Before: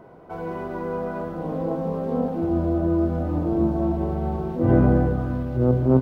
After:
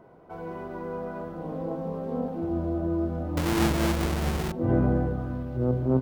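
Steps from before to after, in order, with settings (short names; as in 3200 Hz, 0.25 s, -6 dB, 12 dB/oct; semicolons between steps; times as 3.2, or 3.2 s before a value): 3.37–4.52 half-waves squared off; gain -6 dB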